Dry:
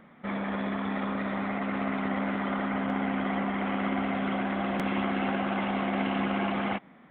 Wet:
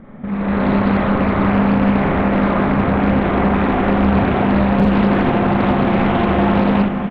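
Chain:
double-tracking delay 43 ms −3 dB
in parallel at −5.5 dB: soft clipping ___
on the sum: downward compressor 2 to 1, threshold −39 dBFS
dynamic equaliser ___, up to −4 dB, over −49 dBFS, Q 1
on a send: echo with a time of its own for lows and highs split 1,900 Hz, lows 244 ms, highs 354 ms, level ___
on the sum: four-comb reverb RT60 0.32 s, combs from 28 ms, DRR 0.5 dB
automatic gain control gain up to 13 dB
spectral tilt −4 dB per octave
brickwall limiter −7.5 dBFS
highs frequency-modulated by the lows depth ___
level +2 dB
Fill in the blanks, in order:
−28 dBFS, 520 Hz, −9 dB, 0.44 ms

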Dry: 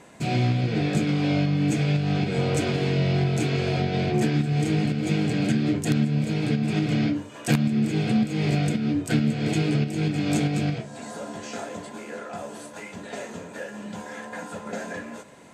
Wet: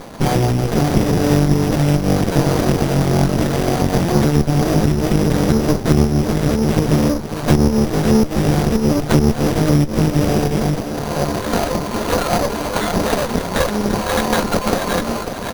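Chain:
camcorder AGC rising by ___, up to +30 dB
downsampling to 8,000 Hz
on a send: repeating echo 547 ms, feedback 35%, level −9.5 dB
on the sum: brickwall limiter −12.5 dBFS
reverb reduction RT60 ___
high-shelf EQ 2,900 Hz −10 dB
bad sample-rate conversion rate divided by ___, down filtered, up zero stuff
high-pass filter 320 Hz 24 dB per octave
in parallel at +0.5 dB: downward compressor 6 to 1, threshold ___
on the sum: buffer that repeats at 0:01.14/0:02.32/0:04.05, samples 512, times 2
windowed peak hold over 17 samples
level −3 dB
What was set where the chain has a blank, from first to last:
9.2 dB per second, 0.6 s, 8×, −31 dBFS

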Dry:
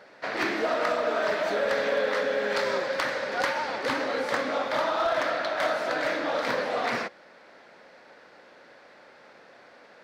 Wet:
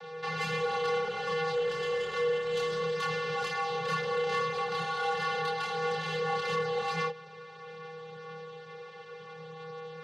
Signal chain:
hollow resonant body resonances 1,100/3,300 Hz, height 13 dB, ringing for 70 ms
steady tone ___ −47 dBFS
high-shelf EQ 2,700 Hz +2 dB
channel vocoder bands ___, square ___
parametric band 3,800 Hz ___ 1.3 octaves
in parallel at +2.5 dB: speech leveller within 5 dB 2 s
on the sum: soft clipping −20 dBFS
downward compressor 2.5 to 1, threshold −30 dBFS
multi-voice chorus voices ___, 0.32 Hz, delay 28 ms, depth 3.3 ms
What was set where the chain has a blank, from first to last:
620 Hz, 16, 160 Hz, +5.5 dB, 4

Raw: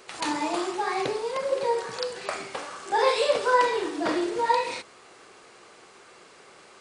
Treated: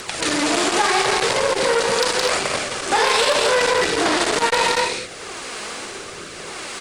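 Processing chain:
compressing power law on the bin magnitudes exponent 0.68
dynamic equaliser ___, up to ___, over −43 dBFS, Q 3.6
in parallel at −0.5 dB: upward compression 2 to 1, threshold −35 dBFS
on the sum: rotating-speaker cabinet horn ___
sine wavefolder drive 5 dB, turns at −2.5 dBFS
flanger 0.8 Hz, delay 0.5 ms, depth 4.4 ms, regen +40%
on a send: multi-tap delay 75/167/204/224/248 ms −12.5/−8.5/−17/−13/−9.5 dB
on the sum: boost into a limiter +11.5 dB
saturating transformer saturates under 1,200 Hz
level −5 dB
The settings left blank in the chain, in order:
300 Hz, −3 dB, 0.85 Hz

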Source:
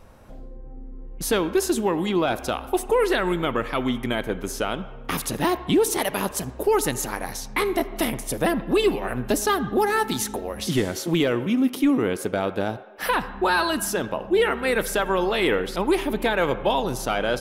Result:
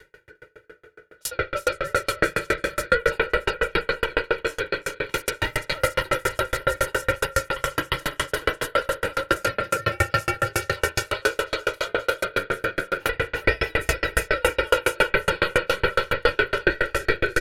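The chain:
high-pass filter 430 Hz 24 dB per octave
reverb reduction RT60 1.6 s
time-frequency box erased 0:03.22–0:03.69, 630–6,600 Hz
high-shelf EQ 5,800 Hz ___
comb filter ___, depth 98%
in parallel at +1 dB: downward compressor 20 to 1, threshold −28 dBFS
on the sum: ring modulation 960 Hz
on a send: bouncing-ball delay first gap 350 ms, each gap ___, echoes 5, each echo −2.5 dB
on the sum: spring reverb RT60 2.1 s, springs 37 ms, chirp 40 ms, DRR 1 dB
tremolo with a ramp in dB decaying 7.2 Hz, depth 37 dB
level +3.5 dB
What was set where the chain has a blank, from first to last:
−7 dB, 2.1 ms, 0.8×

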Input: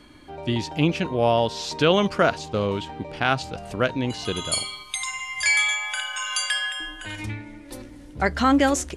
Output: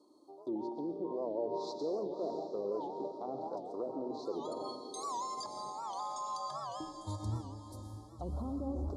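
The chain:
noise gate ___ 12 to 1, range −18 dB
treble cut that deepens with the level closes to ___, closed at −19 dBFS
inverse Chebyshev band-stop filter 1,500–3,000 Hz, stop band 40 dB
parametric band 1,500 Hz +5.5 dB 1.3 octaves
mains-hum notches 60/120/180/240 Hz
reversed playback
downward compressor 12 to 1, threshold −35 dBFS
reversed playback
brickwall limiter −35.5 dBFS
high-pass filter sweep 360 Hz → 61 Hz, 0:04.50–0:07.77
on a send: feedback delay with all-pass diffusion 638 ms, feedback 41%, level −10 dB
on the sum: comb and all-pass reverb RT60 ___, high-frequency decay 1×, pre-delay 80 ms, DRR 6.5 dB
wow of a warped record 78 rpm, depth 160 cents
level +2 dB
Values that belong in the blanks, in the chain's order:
−32 dBFS, 490 Hz, 0.93 s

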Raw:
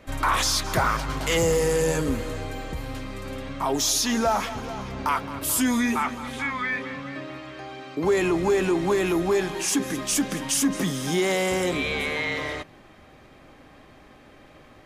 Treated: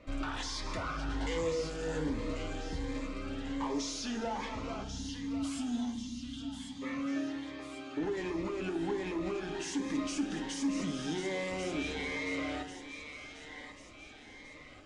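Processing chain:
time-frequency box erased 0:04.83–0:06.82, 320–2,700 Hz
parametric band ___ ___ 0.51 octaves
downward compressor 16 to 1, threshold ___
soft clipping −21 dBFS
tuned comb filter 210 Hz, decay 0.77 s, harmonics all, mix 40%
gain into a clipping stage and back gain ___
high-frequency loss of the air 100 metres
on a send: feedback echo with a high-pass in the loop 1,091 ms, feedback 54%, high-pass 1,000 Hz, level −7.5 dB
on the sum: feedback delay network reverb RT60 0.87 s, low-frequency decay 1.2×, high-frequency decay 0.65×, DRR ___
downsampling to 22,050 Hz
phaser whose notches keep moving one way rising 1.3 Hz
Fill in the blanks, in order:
140 Hz, −7 dB, −24 dBFS, 31 dB, 7 dB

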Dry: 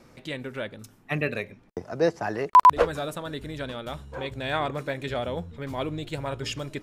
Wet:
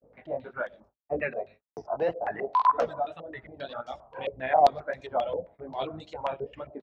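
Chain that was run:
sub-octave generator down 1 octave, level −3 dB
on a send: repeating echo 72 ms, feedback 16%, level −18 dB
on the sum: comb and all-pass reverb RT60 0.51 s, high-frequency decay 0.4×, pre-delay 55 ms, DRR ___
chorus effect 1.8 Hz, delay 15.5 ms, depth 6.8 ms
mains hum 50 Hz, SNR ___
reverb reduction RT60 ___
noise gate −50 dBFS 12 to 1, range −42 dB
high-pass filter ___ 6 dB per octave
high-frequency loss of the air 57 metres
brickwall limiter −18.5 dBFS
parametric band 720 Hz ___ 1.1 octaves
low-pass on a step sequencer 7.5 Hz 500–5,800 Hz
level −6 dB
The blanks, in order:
13.5 dB, 23 dB, 2 s, 160 Hz, +12.5 dB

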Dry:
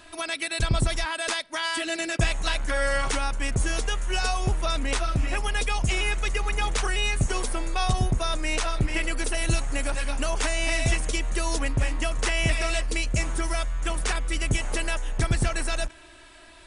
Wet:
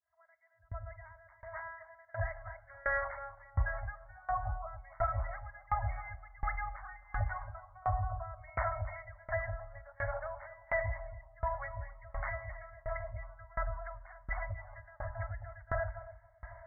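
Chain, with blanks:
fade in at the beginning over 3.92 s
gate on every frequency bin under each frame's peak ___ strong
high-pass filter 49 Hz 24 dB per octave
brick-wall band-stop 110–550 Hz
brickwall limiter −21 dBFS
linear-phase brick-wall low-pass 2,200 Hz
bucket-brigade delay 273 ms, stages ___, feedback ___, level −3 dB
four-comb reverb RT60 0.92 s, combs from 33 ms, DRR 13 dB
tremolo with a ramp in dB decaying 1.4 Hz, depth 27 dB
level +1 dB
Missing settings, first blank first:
−30 dB, 2,048, 51%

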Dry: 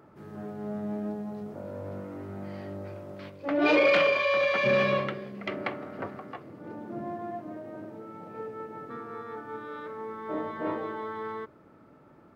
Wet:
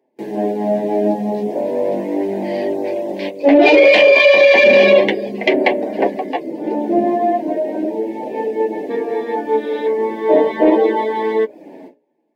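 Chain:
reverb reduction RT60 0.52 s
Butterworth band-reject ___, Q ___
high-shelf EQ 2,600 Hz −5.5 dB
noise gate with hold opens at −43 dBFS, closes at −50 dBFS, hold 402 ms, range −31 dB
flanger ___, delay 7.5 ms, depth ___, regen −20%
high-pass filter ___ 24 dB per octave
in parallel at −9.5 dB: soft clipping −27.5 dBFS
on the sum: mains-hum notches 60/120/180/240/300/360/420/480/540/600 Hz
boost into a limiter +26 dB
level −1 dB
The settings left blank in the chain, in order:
1,300 Hz, 1.3, 0.36 Hz, 6.9 ms, 260 Hz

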